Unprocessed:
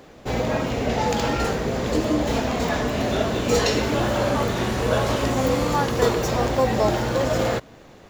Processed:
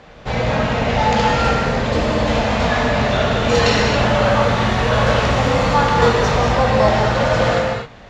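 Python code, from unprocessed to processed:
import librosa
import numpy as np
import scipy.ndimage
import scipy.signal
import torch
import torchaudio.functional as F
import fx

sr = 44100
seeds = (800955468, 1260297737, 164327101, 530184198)

y = scipy.signal.sosfilt(scipy.signal.butter(2, 4200.0, 'lowpass', fs=sr, output='sos'), x)
y = fx.peak_eq(y, sr, hz=330.0, db=-11.0, octaves=1.1)
y = fx.rev_gated(y, sr, seeds[0], gate_ms=290, shape='flat', drr_db=-1.0)
y = F.gain(torch.from_numpy(y), 6.0).numpy()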